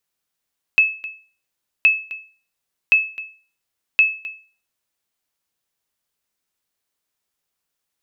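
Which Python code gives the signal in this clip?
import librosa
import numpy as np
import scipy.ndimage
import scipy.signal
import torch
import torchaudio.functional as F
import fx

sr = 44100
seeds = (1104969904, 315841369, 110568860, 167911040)

y = fx.sonar_ping(sr, hz=2600.0, decay_s=0.39, every_s=1.07, pings=4, echo_s=0.26, echo_db=-18.0, level_db=-6.0)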